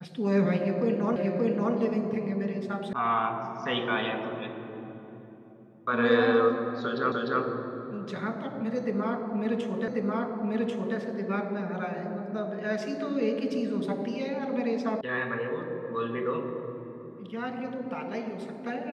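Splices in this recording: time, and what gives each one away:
1.16 repeat of the last 0.58 s
2.93 sound cut off
7.12 repeat of the last 0.3 s
9.88 repeat of the last 1.09 s
15.01 sound cut off

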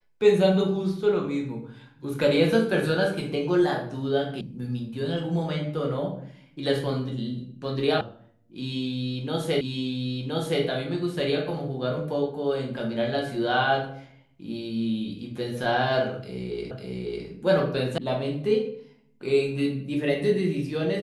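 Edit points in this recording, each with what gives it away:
4.41 sound cut off
8.01 sound cut off
9.61 repeat of the last 1.02 s
16.71 repeat of the last 0.55 s
17.98 sound cut off

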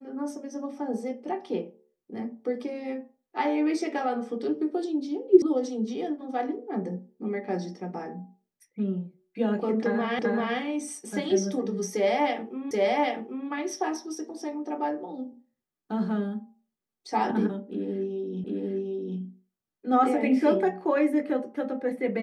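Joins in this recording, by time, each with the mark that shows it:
5.42 sound cut off
10.19 repeat of the last 0.39 s
12.71 repeat of the last 0.78 s
18.44 repeat of the last 0.75 s

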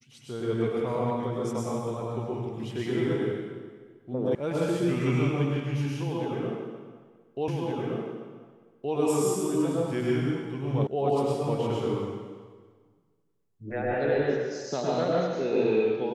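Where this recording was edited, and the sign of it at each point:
4.35 sound cut off
7.48 repeat of the last 1.47 s
10.87 sound cut off

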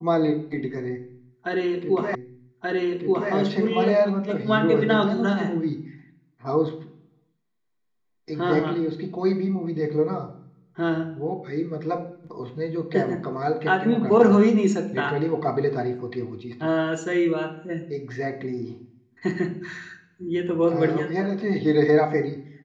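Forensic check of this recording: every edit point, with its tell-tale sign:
2.15 repeat of the last 1.18 s

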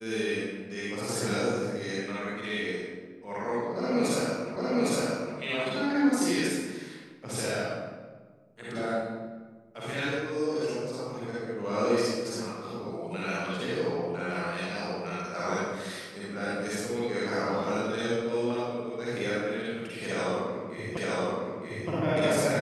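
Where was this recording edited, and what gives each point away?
4.56 repeat of the last 0.81 s
20.97 repeat of the last 0.92 s

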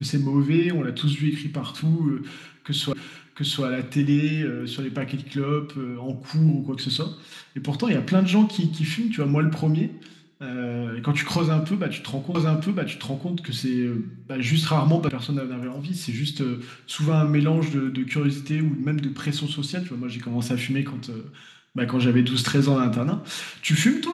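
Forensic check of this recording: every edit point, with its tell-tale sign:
2.93 repeat of the last 0.71 s
12.35 repeat of the last 0.96 s
15.09 sound cut off

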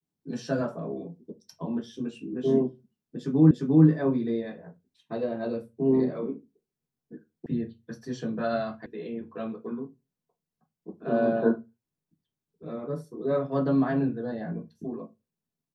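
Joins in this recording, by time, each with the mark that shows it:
3.51 repeat of the last 0.35 s
7.46 sound cut off
8.86 sound cut off

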